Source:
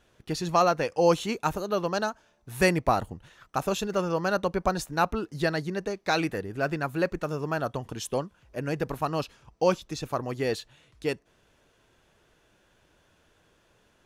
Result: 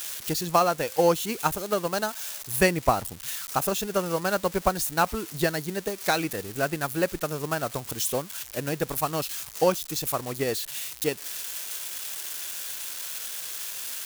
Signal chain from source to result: zero-crossing glitches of -23 dBFS; transient shaper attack +5 dB, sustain -2 dB; trim -1.5 dB

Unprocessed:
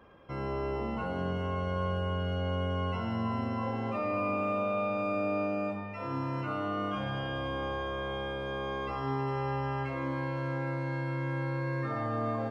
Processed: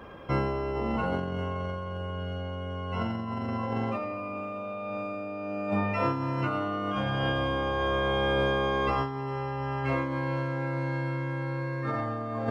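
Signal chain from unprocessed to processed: compressor with a negative ratio -36 dBFS, ratio -0.5; trim +7 dB

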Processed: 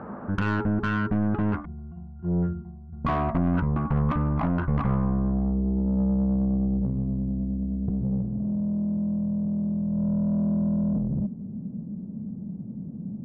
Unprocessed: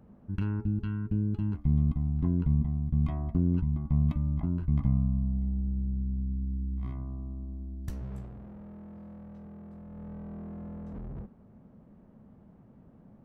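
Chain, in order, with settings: in parallel at -2.5 dB: compression, threshold -41 dBFS, peak gain reduction 18.5 dB; on the sum: low-pass sweep 1.4 kHz -> 190 Hz, 5.19–6.07 s; 1.65–3.05 s: pitch-class resonator F, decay 0.52 s; overdrive pedal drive 28 dB, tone 2 kHz, clips at -15 dBFS

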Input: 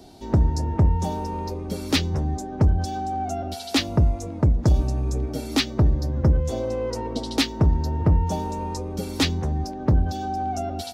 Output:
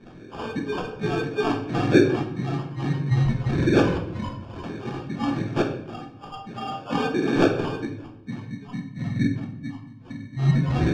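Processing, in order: spectrum inverted on a logarithmic axis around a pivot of 1.2 kHz; recorder AGC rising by 5.6 dB/s; 1.12–1.78 s: treble shelf 4.9 kHz +9.5 dB; 5.42–6.70 s: level held to a coarse grid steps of 19 dB; 7.85–10.37 s: time-frequency box 300–6100 Hz -28 dB; transient shaper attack -8 dB, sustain +1 dB; LFO low-pass sine 2.9 Hz 350–4800 Hz; sample-and-hold 22×; distance through air 150 m; simulated room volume 200 m³, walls mixed, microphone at 0.8 m; trim +2.5 dB

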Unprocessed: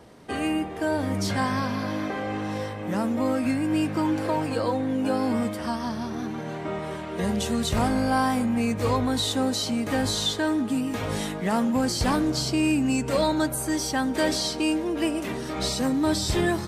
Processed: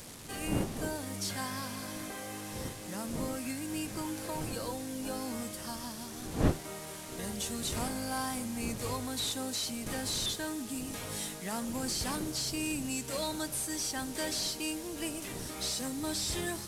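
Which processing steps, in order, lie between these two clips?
one-bit delta coder 64 kbps, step -34.5 dBFS; wind noise 290 Hz -29 dBFS; pre-emphasis filter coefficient 0.8

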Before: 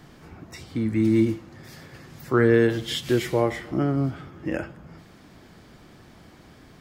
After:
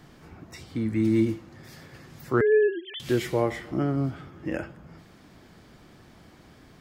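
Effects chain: 2.41–3.00 s: formants replaced by sine waves; trim -2.5 dB

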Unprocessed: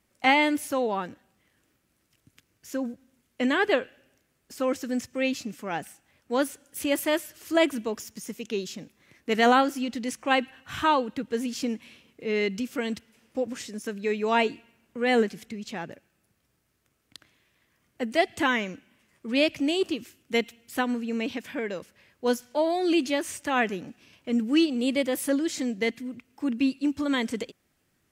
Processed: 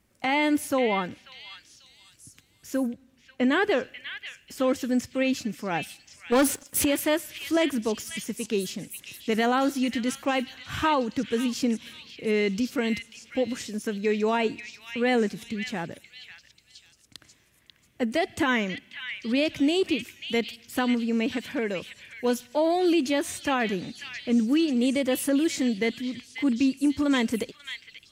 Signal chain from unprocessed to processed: bass shelf 220 Hz +6 dB; peak limiter -17 dBFS, peak gain reduction 9.5 dB; 2.83–3.52 s: treble shelf 4.1 kHz -7.5 dB; 6.32–6.85 s: waveshaping leveller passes 3; repeats whose band climbs or falls 540 ms, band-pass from 2.7 kHz, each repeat 0.7 oct, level -4 dB; trim +1.5 dB

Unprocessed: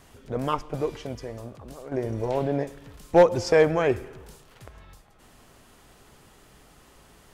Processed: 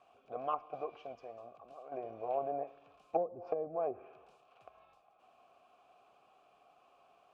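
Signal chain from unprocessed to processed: low-pass that closes with the level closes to 330 Hz, closed at -16 dBFS; vowel filter a; trim +1 dB

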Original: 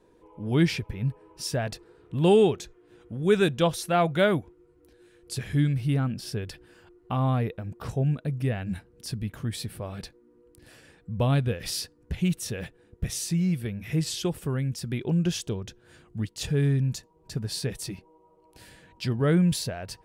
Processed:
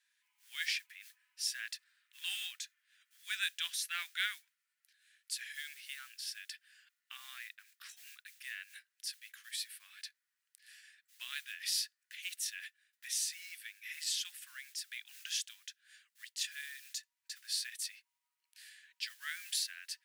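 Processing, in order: modulation noise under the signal 30 dB; elliptic high-pass 1.7 kHz, stop band 80 dB; trim -2 dB

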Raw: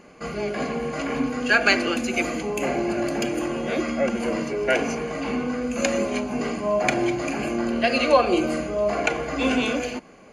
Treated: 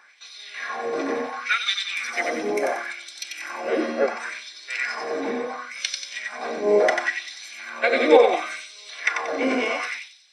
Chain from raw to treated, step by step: formant shift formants -3 st; thinning echo 92 ms, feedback 45%, high-pass 950 Hz, level -3.5 dB; LFO high-pass sine 0.71 Hz 370–3900 Hz; trim -1 dB

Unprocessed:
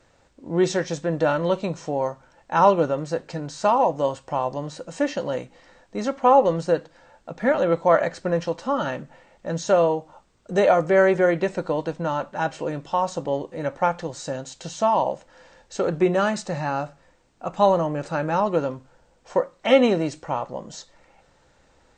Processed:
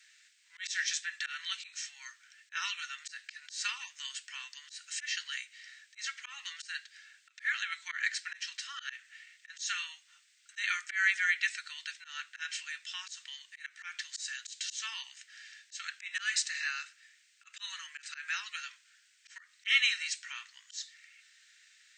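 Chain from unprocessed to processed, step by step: steep high-pass 1.7 kHz 48 dB/octave; slow attack 154 ms; trim +5.5 dB

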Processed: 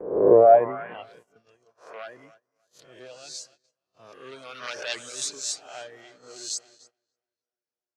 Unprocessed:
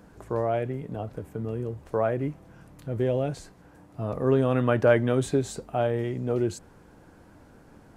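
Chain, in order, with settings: reverse spectral sustain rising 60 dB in 0.84 s; sine folder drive 8 dB, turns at -5 dBFS; reverb removal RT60 1.8 s; filtered feedback delay 293 ms, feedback 74%, low-pass 3.6 kHz, level -13 dB; band-pass sweep 440 Hz -> 5.6 kHz, 0.40–1.25 s; gate -51 dBFS, range -19 dB; treble shelf 7.4 kHz -6.5 dB; three bands expanded up and down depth 40%; trim +1.5 dB

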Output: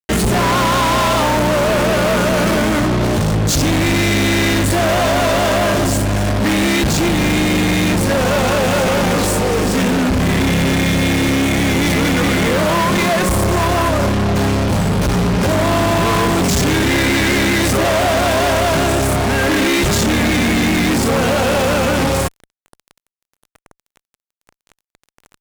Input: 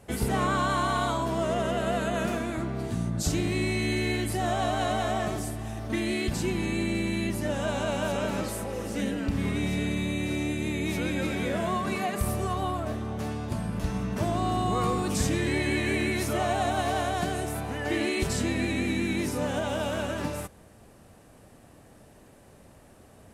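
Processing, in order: median filter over 3 samples; speed mistake 48 kHz file played as 44.1 kHz; fuzz box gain 41 dB, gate -44 dBFS

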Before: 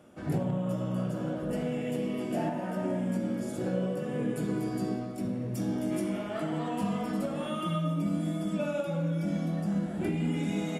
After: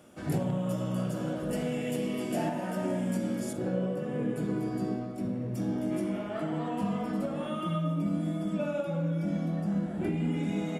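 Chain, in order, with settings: treble shelf 3 kHz +7.5 dB, from 3.53 s -6.5 dB

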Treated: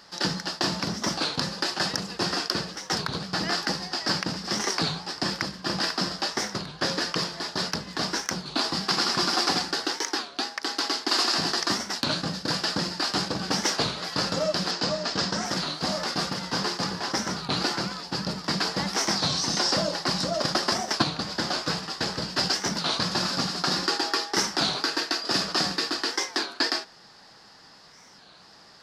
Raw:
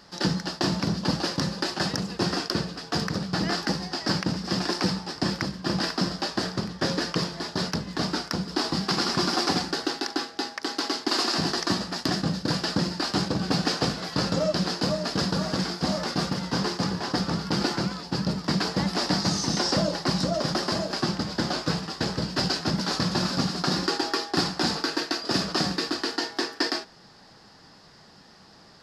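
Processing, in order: 14.71–15.47 s: low-pass 7.8 kHz 24 dB/octave; 20.38–21.08 s: transient shaper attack +6 dB, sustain -1 dB; bass shelf 450 Hz -9.5 dB; warped record 33 1/3 rpm, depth 250 cents; trim +2.5 dB

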